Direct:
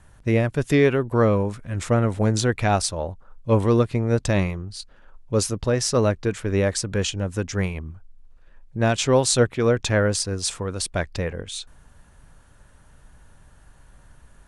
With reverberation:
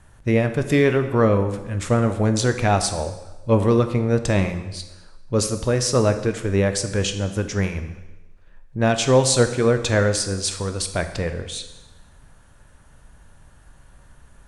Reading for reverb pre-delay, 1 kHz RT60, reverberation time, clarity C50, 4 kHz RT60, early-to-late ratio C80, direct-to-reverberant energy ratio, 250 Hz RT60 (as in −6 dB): 7 ms, 1.1 s, 1.1 s, 10.5 dB, 1.0 s, 12.0 dB, 8.0 dB, 1.1 s